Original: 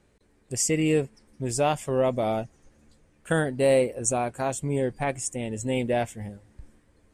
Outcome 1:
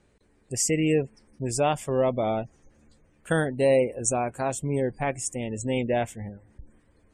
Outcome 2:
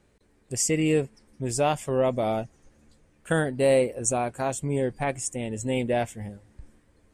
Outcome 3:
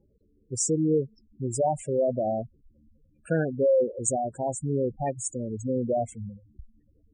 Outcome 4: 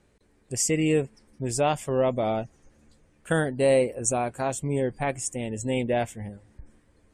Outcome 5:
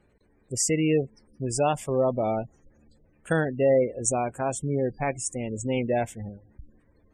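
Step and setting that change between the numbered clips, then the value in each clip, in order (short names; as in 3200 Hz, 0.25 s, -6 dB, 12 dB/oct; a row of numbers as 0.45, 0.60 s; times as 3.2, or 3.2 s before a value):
spectral gate, under each frame's peak: -35, -60, -10, -45, -25 dB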